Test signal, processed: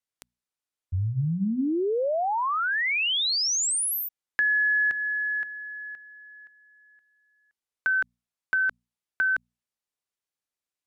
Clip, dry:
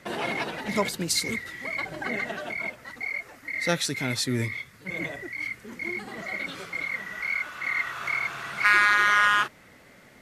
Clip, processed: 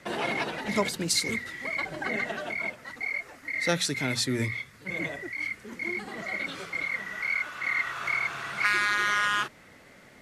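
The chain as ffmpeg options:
-filter_complex "[0:a]lowpass=12k,acrossover=split=460|3000[a][b][c];[b]acompressor=threshold=-23dB:ratio=6[d];[a][d][c]amix=inputs=3:normalize=0,bandreject=f=60:t=h:w=6,bandreject=f=120:t=h:w=6,bandreject=f=180:t=h:w=6,bandreject=f=240:t=h:w=6"

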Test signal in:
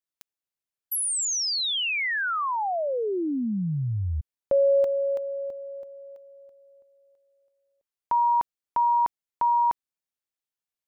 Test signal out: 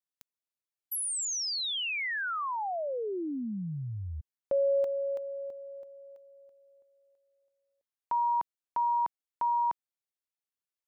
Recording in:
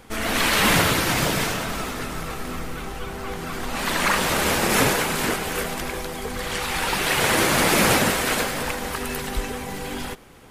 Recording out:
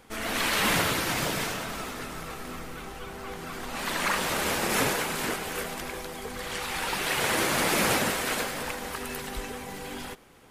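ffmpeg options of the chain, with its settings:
-af "lowshelf=f=160:g=-5,volume=-6dB"

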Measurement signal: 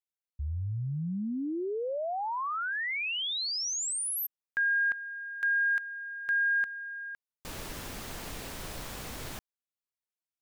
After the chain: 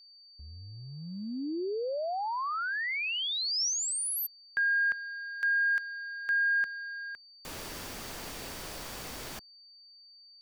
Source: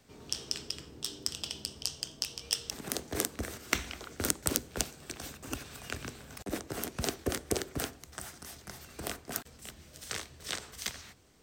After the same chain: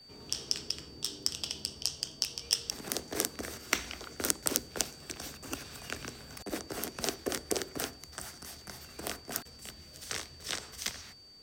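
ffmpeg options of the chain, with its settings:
-filter_complex "[0:a]adynamicequalizer=threshold=0.00224:dfrequency=5500:dqfactor=4:tfrequency=5500:tqfactor=4:attack=5:release=100:ratio=0.375:range=2:mode=boostabove:tftype=bell,acrossover=split=240|1200[a][b][c];[a]acompressor=threshold=-47dB:ratio=6:attack=0.2:release=21:knee=1:detection=rms[d];[d][b][c]amix=inputs=3:normalize=0,aeval=exprs='val(0)+0.00224*sin(2*PI*4600*n/s)':c=same"

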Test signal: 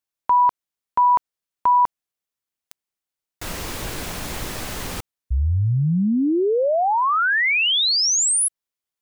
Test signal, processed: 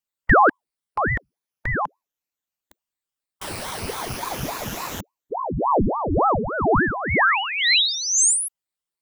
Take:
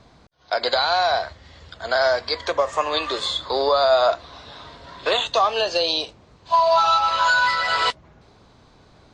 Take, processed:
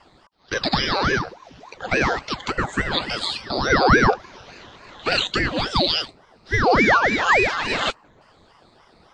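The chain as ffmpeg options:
-af "afftfilt=real='re*pow(10,12/40*sin(2*PI*(1*log(max(b,1)*sr/1024/100)/log(2)-(0.36)*(pts-256)/sr)))':imag='im*pow(10,12/40*sin(2*PI*(1*log(max(b,1)*sr/1024/100)/log(2)-(0.36)*(pts-256)/sr)))':win_size=1024:overlap=0.75,afreqshift=-44,aeval=exprs='val(0)*sin(2*PI*580*n/s+580*0.85/3.5*sin(2*PI*3.5*n/s))':c=same"

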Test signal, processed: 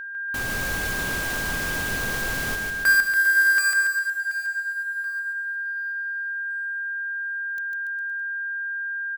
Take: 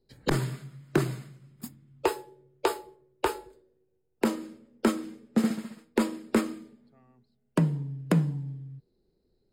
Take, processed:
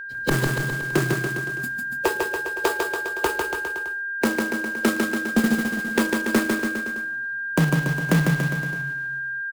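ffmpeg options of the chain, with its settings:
-filter_complex "[0:a]acontrast=35,acrusher=bits=2:mode=log:mix=0:aa=0.000001,aeval=exprs='val(0)+0.0316*sin(2*PI*1600*n/s)':c=same,asplit=2[a][b];[b]aecho=0:1:150|285|406.5|515.8|614.3:0.631|0.398|0.251|0.158|0.1[c];[a][c]amix=inputs=2:normalize=0,volume=-2dB"

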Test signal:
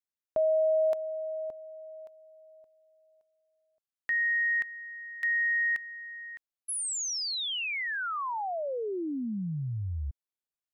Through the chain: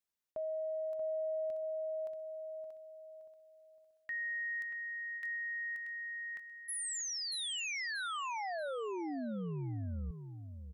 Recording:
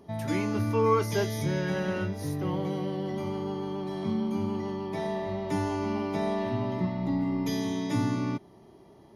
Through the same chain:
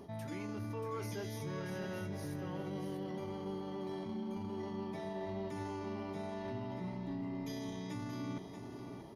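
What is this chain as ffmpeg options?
-af "areverse,acompressor=threshold=-41dB:ratio=5:attack=0.13:release=110:detection=peak,areverse,aecho=1:1:633|1266|1899:0.398|0.0916|0.0211,volume=2.5dB"

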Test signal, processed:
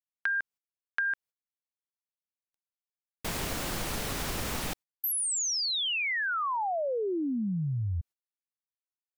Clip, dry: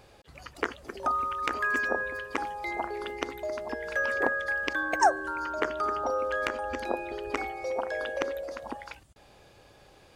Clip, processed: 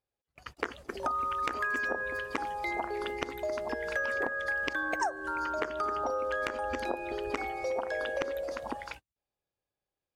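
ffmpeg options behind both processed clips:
-af "agate=range=-38dB:threshold=-45dB:ratio=16:detection=peak,acompressor=threshold=-30dB:ratio=6,volume=1.5dB"

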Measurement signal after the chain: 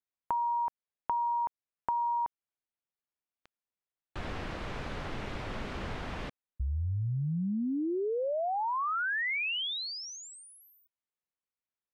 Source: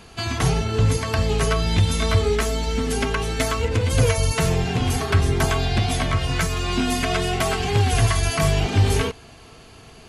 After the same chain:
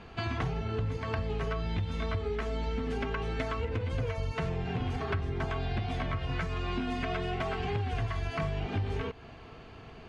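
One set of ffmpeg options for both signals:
-af "lowpass=2.6k,acompressor=threshold=-27dB:ratio=6,volume=-2.5dB"

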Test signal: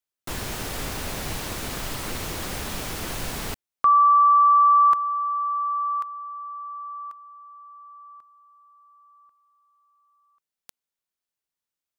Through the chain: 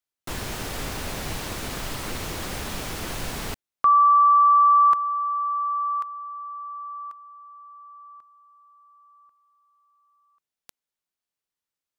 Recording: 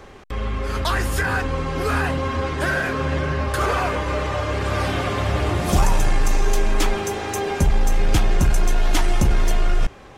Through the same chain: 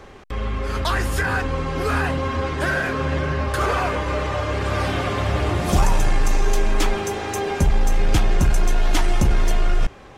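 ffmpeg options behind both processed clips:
-af "highshelf=f=8.8k:g=-3.5"

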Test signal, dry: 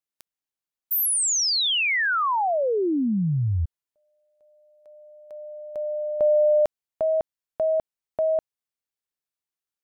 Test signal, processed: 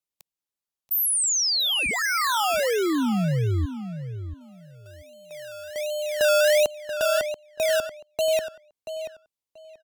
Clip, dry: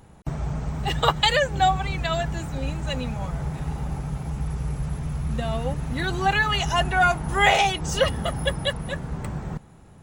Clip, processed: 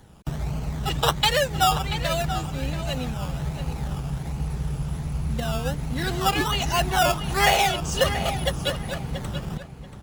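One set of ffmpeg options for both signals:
-filter_complex "[0:a]acrossover=split=270|1800|7900[a][b][c][d];[b]acrusher=samples=17:mix=1:aa=0.000001:lfo=1:lforange=10.2:lforate=1.3[e];[a][e][c][d]amix=inputs=4:normalize=0,asplit=2[f][g];[g]adelay=683,lowpass=f=4.8k:p=1,volume=-10dB,asplit=2[h][i];[i]adelay=683,lowpass=f=4.8k:p=1,volume=0.2,asplit=2[j][k];[k]adelay=683,lowpass=f=4.8k:p=1,volume=0.2[l];[f][h][j][l]amix=inputs=4:normalize=0" -ar 48000 -c:a libmp3lame -b:a 192k

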